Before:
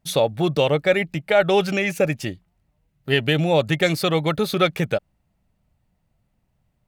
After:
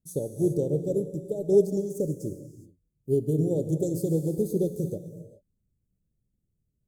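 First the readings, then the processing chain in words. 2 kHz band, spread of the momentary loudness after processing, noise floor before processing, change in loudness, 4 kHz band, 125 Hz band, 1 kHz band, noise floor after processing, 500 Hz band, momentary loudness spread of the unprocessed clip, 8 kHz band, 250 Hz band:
under -40 dB, 15 LU, -70 dBFS, -6.5 dB, under -30 dB, -4.0 dB, under -25 dB, -78 dBFS, -6.0 dB, 7 LU, -7.0 dB, -3.5 dB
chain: elliptic band-stop 430–7000 Hz, stop band 60 dB; non-linear reverb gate 0.44 s flat, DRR 5.5 dB; upward expander 1.5:1, over -33 dBFS

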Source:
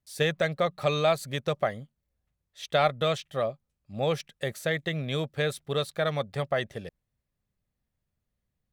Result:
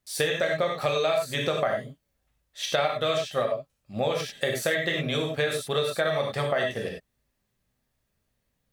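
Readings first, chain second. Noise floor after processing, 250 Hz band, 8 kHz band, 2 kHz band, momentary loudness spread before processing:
-77 dBFS, +0.5 dB, +7.0 dB, +4.0 dB, 9 LU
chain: non-linear reverb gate 0.12 s flat, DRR -0.5 dB; compressor 6:1, threshold -28 dBFS, peak gain reduction 13.5 dB; low shelf 250 Hz -8 dB; gain +7 dB

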